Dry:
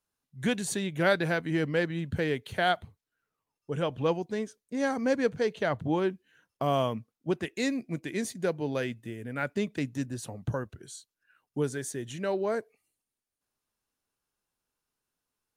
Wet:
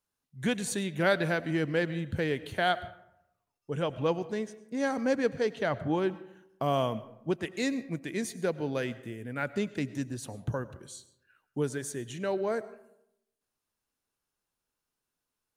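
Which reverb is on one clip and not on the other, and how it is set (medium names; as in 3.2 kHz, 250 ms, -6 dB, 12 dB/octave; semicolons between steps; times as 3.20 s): algorithmic reverb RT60 0.83 s, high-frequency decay 0.5×, pre-delay 65 ms, DRR 16 dB; trim -1 dB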